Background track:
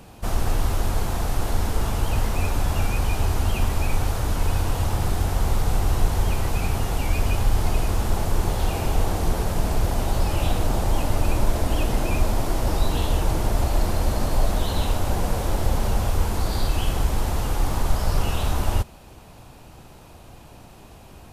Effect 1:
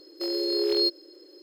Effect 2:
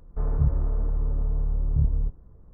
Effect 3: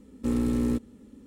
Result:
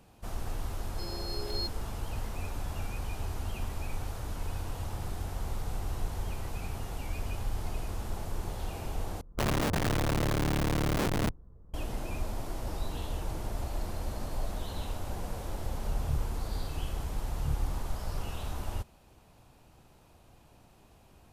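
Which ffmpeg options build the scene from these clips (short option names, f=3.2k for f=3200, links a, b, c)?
-filter_complex "[2:a]asplit=2[a][b];[0:a]volume=-13.5dB[c];[1:a]lowshelf=f=310:g=-11.5[d];[a]aeval=exprs='(mod(11.2*val(0)+1,2)-1)/11.2':c=same[e];[c]asplit=2[f][g];[f]atrim=end=9.214[h];[e]atrim=end=2.53,asetpts=PTS-STARTPTS,volume=-3.5dB[i];[g]atrim=start=11.736[j];[d]atrim=end=1.42,asetpts=PTS-STARTPTS,volume=-11.5dB,afade=t=in:d=0.004:c=hsin,afade=t=out:st=1.416:d=0.004:c=hsin,adelay=780[k];[b]atrim=end=2.53,asetpts=PTS-STARTPTS,volume=-10.5dB,afade=t=in:d=0.004:c=hsin,afade=t=out:st=2.526:d=0.004:c=hsin,adelay=15690[l];[h][i]acrossfade=d=0.004:c1=hsin:c2=hsin[m];[m][j]acrossfade=d=0.004:c1=hsin:c2=hsin[n];[n][k][l]amix=inputs=3:normalize=0"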